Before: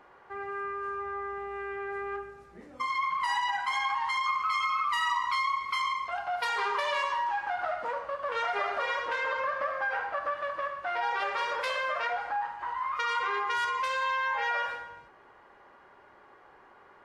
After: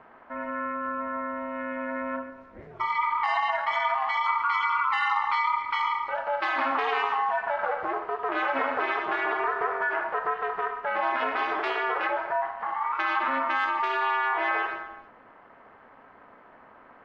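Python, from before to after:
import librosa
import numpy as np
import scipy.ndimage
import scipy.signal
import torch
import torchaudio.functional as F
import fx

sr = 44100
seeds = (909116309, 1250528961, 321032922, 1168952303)

y = fx.bandpass_edges(x, sr, low_hz=110.0, high_hz=2500.0)
y = y * np.sin(2.0 * np.pi * 140.0 * np.arange(len(y)) / sr)
y = F.gain(torch.from_numpy(y), 7.0).numpy()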